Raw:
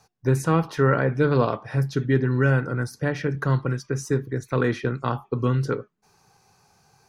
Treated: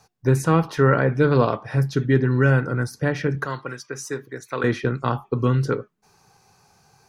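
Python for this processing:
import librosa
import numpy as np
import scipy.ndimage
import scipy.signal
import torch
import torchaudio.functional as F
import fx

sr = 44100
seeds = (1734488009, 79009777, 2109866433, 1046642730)

y = fx.highpass(x, sr, hz=810.0, slope=6, at=(3.45, 4.64))
y = F.gain(torch.from_numpy(y), 2.5).numpy()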